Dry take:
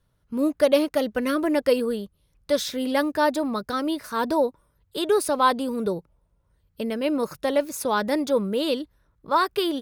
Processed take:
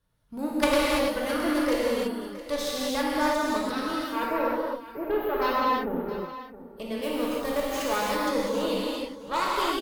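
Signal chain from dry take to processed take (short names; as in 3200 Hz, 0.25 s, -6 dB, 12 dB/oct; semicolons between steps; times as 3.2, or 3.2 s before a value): one-sided fold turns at -13.5 dBFS; low shelf 370 Hz -4 dB; in parallel at -2 dB: compressor, threshold -30 dBFS, peak gain reduction 13.5 dB; 4.04–6.26 on the sum: spectral delete 2300–12000 Hz; 7.02–7.96 sample-rate reducer 13000 Hz, jitter 0%; added harmonics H 3 -8 dB, 5 -20 dB, 6 -29 dB, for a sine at -6 dBFS; on a send: echo 0.668 s -15 dB; on the sum: non-linear reverb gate 0.36 s flat, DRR -6 dB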